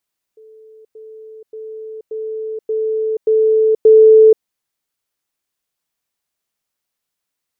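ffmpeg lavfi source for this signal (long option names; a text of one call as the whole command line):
ffmpeg -f lavfi -i "aevalsrc='pow(10,(-39.5+6*floor(t/0.58))/20)*sin(2*PI*438*t)*clip(min(mod(t,0.58),0.48-mod(t,0.58))/0.005,0,1)':duration=4.06:sample_rate=44100" out.wav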